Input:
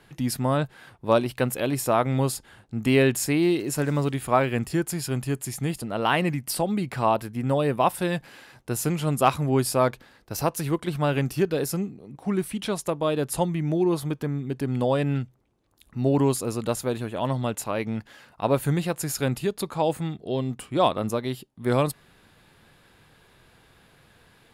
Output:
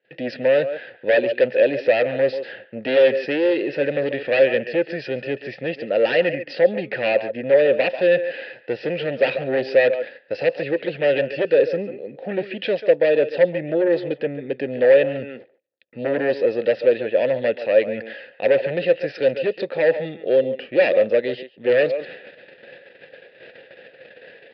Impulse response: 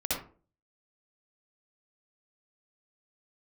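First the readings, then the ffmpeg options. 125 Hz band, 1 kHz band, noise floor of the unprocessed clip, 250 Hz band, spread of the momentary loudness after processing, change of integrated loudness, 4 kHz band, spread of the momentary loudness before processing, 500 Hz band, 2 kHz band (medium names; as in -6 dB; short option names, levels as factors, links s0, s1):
-10.5 dB, -6.5 dB, -58 dBFS, -3.0 dB, 11 LU, +5.5 dB, +2.0 dB, 8 LU, +9.5 dB, +8.5 dB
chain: -filter_complex "[0:a]agate=range=0.02:threshold=0.00224:ratio=16:detection=peak,acontrast=89,asplit=2[s0][s1];[s1]adelay=140,highpass=300,lowpass=3400,asoftclip=type=hard:threshold=0.237,volume=0.224[s2];[s0][s2]amix=inputs=2:normalize=0,aeval=exprs='0.708*sin(PI/2*3.16*val(0)/0.708)':c=same,asplit=3[s3][s4][s5];[s3]bandpass=f=530:t=q:w=8,volume=1[s6];[s4]bandpass=f=1840:t=q:w=8,volume=0.501[s7];[s5]bandpass=f=2480:t=q:w=8,volume=0.355[s8];[s6][s7][s8]amix=inputs=3:normalize=0,areverse,acompressor=mode=upward:threshold=0.0501:ratio=2.5,areverse,highpass=110,aresample=11025,aresample=44100"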